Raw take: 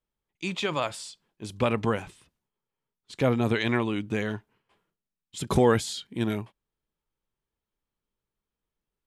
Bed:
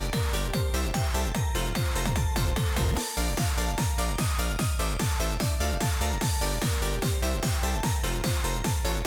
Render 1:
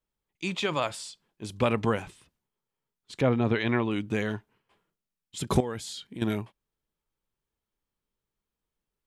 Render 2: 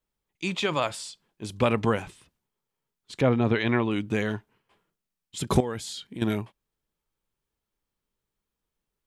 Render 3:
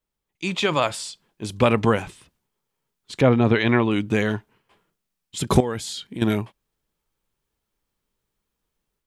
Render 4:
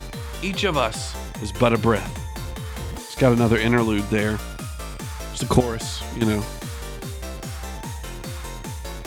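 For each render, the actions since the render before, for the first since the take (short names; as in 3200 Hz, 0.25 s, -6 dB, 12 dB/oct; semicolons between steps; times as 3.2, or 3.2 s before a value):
3.21–3.91 air absorption 170 m; 5.6–6.22 compressor 2.5:1, threshold -37 dBFS
gain +2 dB
AGC gain up to 5.5 dB
add bed -5.5 dB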